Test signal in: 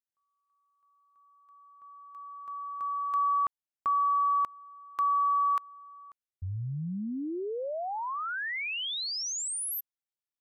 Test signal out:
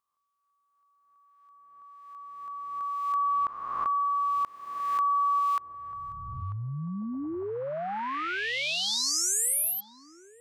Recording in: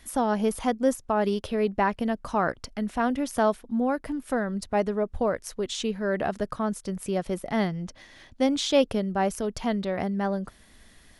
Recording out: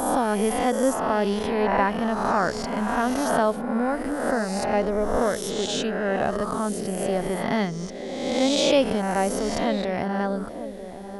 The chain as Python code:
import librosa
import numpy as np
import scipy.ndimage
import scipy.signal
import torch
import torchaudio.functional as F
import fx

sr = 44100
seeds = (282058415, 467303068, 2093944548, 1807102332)

y = fx.spec_swells(x, sr, rise_s=1.33)
y = fx.echo_banded(y, sr, ms=942, feedback_pct=53, hz=370.0, wet_db=-10.0)